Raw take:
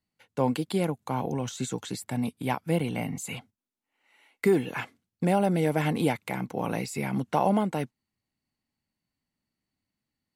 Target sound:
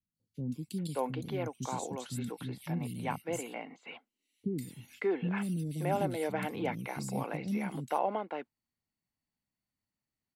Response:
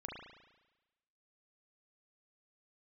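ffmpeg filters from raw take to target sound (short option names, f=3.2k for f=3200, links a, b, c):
-filter_complex "[0:a]acrossover=split=290|3500[a][b][c];[c]adelay=150[d];[b]adelay=580[e];[a][e][d]amix=inputs=3:normalize=0,volume=-5.5dB"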